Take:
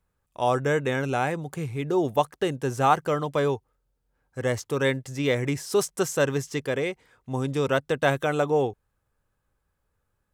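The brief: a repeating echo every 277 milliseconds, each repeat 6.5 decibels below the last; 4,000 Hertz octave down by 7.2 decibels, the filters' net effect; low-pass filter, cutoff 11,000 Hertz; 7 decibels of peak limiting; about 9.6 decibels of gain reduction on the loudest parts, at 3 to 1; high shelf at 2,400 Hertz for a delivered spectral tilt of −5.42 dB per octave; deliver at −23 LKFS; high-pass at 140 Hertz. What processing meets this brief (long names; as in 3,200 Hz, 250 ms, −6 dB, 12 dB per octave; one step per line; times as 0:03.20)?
high-pass filter 140 Hz
low-pass filter 11,000 Hz
high-shelf EQ 2,400 Hz −3.5 dB
parametric band 4,000 Hz −6.5 dB
downward compressor 3 to 1, threshold −30 dBFS
brickwall limiter −24 dBFS
repeating echo 277 ms, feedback 47%, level −6.5 dB
level +12 dB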